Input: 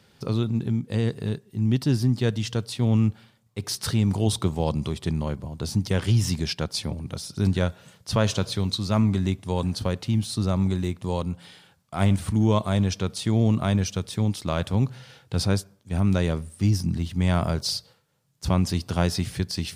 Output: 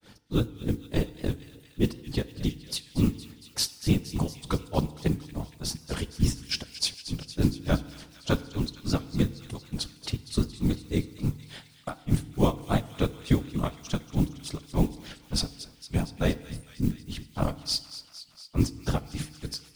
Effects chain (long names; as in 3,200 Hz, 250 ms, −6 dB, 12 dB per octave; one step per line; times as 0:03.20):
in parallel at +2 dB: downward compressor, threshold −34 dBFS, peak gain reduction 17.5 dB
on the sum: granular cloud 187 ms, grains 3.4 per second
noise that follows the level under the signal 27 dB
random phases in short frames
on a send: delay with a high-pass on its return 231 ms, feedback 72%, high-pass 1,900 Hz, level −13 dB
on the sum: feedback delay network reverb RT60 1.2 s, low-frequency decay 1×, high-frequency decay 0.75×, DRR 15 dB
wow of a warped record 78 rpm, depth 100 cents